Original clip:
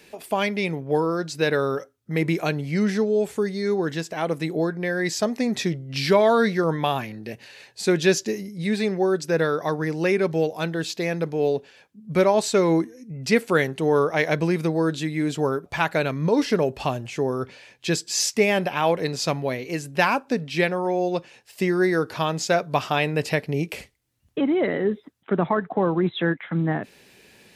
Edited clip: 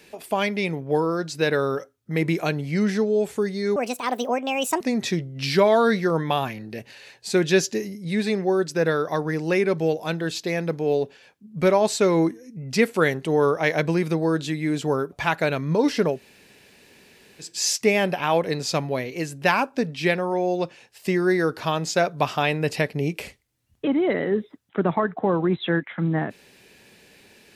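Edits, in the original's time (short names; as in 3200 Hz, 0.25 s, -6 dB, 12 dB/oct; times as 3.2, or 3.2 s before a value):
3.76–5.34 speed 151%
16.68–18 room tone, crossfade 0.16 s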